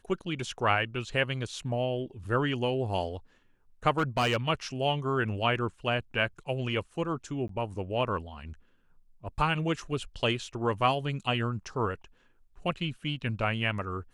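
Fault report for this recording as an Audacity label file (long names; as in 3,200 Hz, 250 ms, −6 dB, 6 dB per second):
3.980000	4.370000	clipping −21.5 dBFS
7.480000	7.490000	drop-out 13 ms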